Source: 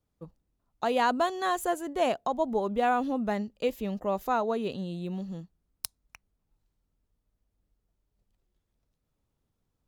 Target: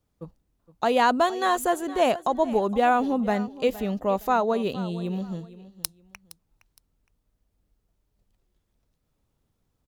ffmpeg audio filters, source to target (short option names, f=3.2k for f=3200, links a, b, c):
-af "aecho=1:1:465|930:0.141|0.0367,volume=5dB"